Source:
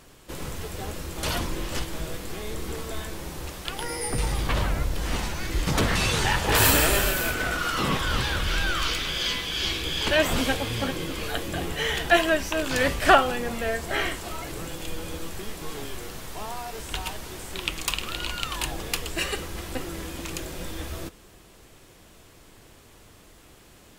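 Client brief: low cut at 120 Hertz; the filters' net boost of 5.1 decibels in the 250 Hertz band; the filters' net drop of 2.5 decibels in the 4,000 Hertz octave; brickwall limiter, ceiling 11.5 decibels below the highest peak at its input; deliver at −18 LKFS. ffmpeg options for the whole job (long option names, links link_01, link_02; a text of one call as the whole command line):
ffmpeg -i in.wav -af "highpass=120,equalizer=frequency=250:width_type=o:gain=7,equalizer=frequency=4000:width_type=o:gain=-3.5,volume=10.5dB,alimiter=limit=-4dB:level=0:latency=1" out.wav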